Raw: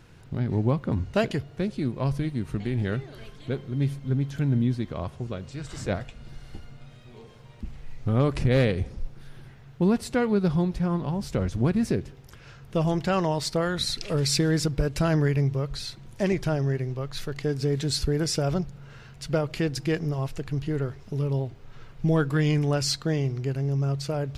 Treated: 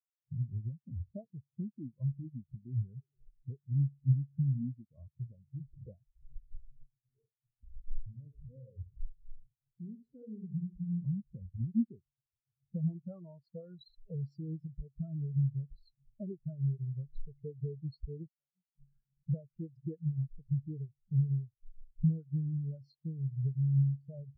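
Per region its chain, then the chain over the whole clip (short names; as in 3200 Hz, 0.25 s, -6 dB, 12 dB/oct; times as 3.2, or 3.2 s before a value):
6.7–11.04 compressor 4:1, threshold -37 dBFS + feedback echo 69 ms, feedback 51%, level -5 dB
18.27–19.27 flipped gate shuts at -26 dBFS, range -26 dB + comb 4.9 ms, depth 83%
whole clip: expander -44 dBFS; compressor 8:1, threshold -34 dBFS; spectral expander 4:1; gain +4.5 dB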